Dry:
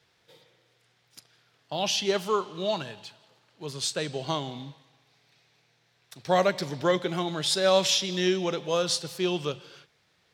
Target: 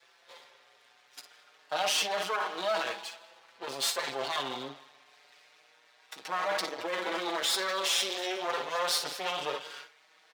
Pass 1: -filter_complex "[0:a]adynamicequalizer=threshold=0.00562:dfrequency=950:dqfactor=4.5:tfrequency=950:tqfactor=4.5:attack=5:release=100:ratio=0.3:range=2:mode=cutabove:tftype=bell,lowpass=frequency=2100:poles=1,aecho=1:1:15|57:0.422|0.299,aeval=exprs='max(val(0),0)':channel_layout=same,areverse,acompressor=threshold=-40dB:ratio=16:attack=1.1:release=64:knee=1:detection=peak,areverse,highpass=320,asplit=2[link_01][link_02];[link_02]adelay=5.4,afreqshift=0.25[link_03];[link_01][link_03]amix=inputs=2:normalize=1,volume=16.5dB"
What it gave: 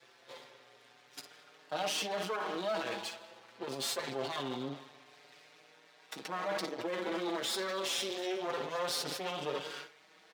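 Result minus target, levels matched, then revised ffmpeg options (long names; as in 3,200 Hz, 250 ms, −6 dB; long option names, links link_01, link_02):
250 Hz band +8.5 dB; downward compressor: peak gain reduction +7 dB
-filter_complex "[0:a]adynamicequalizer=threshold=0.00562:dfrequency=950:dqfactor=4.5:tfrequency=950:tqfactor=4.5:attack=5:release=100:ratio=0.3:range=2:mode=cutabove:tftype=bell,lowpass=frequency=2100:poles=1,aecho=1:1:15|57:0.422|0.299,aeval=exprs='max(val(0),0)':channel_layout=same,areverse,acompressor=threshold=-32.5dB:ratio=16:attack=1.1:release=64:knee=1:detection=peak,areverse,highpass=660,asplit=2[link_01][link_02];[link_02]adelay=5.4,afreqshift=0.25[link_03];[link_01][link_03]amix=inputs=2:normalize=1,volume=16.5dB"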